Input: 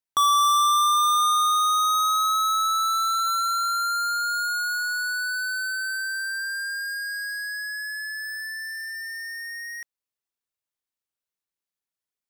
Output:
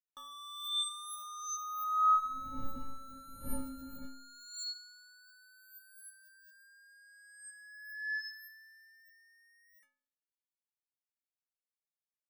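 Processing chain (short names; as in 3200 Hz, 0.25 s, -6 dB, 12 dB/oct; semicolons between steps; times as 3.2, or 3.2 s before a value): 2.1–4.05 wind noise 130 Hz -18 dBFS; metallic resonator 260 Hz, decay 0.7 s, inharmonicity 0.03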